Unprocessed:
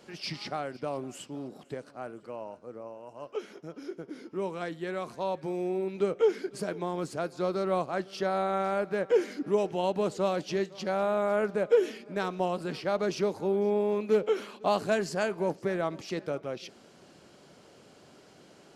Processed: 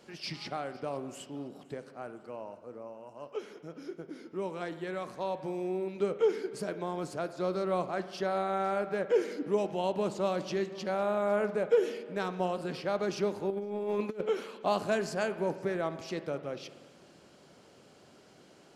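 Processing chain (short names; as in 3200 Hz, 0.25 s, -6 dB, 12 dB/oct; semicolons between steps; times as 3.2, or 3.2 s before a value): spring tank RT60 1.5 s, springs 49 ms, chirp 55 ms, DRR 12 dB; 13.5–14.21 negative-ratio compressor -30 dBFS, ratio -0.5; gain -2.5 dB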